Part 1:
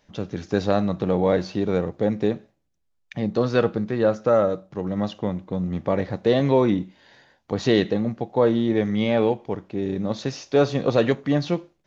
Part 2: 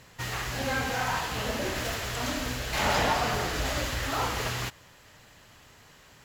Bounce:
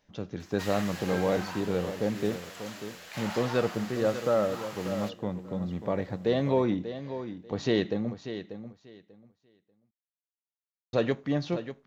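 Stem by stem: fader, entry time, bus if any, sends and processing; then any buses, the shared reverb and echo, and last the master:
−7.0 dB, 0.00 s, muted 0:08.14–0:10.93, no send, echo send −11 dB, no processing
+0.5 dB, 0.40 s, no send, no echo send, high-pass filter 590 Hz; automatic ducking −12 dB, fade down 1.65 s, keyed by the first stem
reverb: not used
echo: repeating echo 590 ms, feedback 19%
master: no processing

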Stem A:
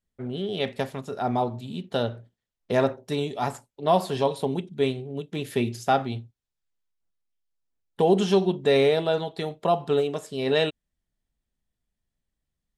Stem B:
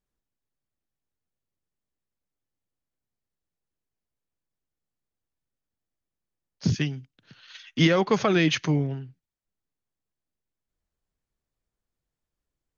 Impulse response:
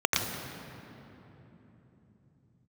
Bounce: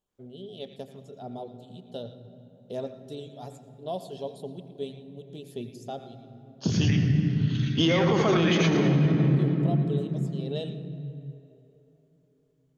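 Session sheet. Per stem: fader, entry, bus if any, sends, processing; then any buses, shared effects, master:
−12.5 dB, 0.00 s, send −20 dB, reverb reduction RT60 0.8 s; flat-topped bell 1,400 Hz −11.5 dB; automatic ducking −8 dB, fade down 0.85 s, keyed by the second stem
−4.0 dB, 0.00 s, send −5.5 dB, no processing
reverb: on, RT60 3.5 s, pre-delay 83 ms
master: brickwall limiter −14 dBFS, peak gain reduction 10.5 dB

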